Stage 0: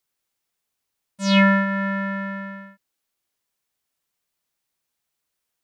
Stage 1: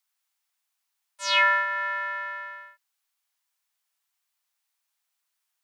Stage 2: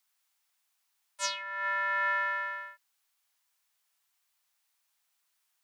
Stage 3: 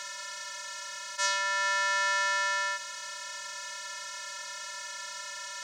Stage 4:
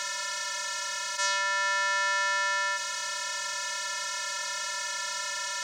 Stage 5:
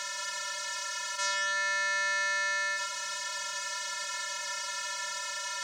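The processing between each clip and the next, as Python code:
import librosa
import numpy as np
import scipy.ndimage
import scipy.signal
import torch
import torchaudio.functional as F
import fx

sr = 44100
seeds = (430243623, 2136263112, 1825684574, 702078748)

y1 = scipy.signal.sosfilt(scipy.signal.butter(4, 770.0, 'highpass', fs=sr, output='sos'), x)
y2 = fx.over_compress(y1, sr, threshold_db=-31.0, ratio=-1.0)
y2 = F.gain(torch.from_numpy(y2), -1.5).numpy()
y3 = fx.bin_compress(y2, sr, power=0.2)
y4 = fx.env_flatten(y3, sr, amount_pct=50)
y5 = y4 + 10.0 ** (-7.0 / 20.0) * np.pad(y4, (int(173 * sr / 1000.0), 0))[:len(y4)]
y5 = F.gain(torch.from_numpy(y5), -3.5).numpy()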